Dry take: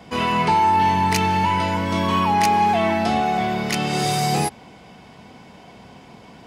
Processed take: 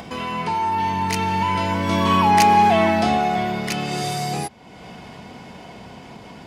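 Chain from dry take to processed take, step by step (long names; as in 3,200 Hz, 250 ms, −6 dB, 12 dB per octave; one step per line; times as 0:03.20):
source passing by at 0:02.51, 6 m/s, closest 4.4 metres
upward compression, threshold −29 dBFS
level +3.5 dB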